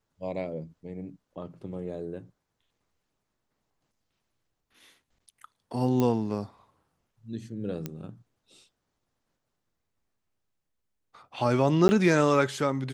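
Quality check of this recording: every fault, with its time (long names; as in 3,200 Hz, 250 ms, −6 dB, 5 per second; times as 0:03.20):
0:06.00: click −14 dBFS
0:07.86: click −18 dBFS
0:11.88–0:11.89: drop-out 10 ms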